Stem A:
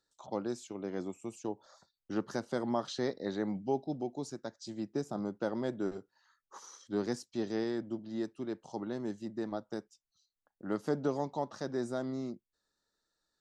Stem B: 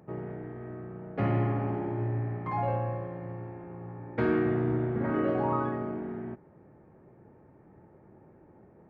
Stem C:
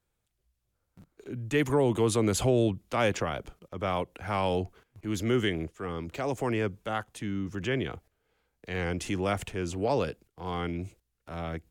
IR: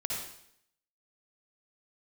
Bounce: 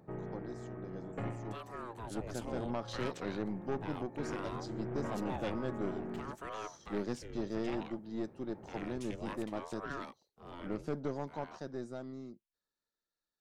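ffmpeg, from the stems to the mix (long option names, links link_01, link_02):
-filter_complex "[0:a]highshelf=frequency=6700:gain=-6.5,acontrast=44,volume=-14dB[link_01];[1:a]alimiter=level_in=3dB:limit=-24dB:level=0:latency=1:release=13,volume=-3dB,volume=-2dB[link_02];[2:a]aeval=exprs='val(0)*sin(2*PI*510*n/s+510*0.7/0.61*sin(2*PI*0.61*n/s))':channel_layout=same,volume=-18dB,asplit=2[link_03][link_04];[link_04]apad=whole_len=392199[link_05];[link_02][link_05]sidechaincompress=threshold=-60dB:ratio=8:attack=33:release=849[link_06];[link_01][link_06][link_03]amix=inputs=3:normalize=0,dynaudnorm=framelen=290:gausssize=17:maxgain=9dB,aeval=exprs='(tanh(28.2*val(0)+0.55)-tanh(0.55))/28.2':channel_layout=same"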